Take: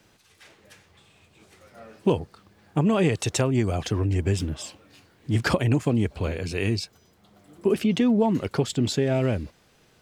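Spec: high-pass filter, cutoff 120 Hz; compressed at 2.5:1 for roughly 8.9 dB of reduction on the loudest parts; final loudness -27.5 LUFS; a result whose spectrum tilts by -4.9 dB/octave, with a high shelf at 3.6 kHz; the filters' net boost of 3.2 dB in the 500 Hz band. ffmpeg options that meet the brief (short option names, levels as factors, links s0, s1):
-af "highpass=120,equalizer=f=500:t=o:g=4,highshelf=f=3600:g=5,acompressor=threshold=0.0398:ratio=2.5,volume=1.41"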